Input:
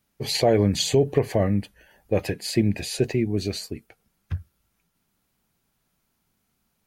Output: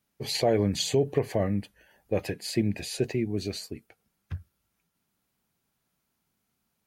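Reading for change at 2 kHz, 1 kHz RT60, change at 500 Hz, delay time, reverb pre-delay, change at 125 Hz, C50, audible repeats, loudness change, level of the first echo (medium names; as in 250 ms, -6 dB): -4.5 dB, no reverb, -4.5 dB, no echo, no reverb, -6.0 dB, no reverb, no echo, -5.0 dB, no echo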